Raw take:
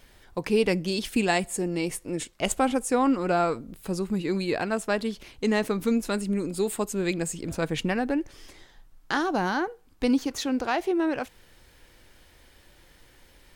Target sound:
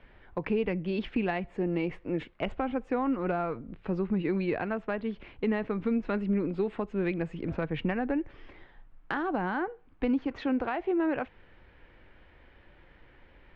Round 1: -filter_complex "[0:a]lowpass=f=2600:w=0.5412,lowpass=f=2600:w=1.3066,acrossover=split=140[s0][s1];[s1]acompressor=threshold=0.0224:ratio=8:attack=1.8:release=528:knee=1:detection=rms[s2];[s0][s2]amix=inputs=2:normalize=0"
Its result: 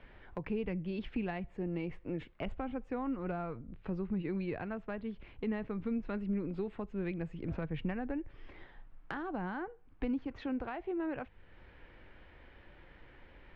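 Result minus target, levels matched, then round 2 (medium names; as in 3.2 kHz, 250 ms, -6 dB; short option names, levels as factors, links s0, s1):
compression: peak gain reduction +9 dB
-filter_complex "[0:a]lowpass=f=2600:w=0.5412,lowpass=f=2600:w=1.3066,acrossover=split=140[s0][s1];[s1]acompressor=threshold=0.075:ratio=8:attack=1.8:release=528:knee=1:detection=rms[s2];[s0][s2]amix=inputs=2:normalize=0"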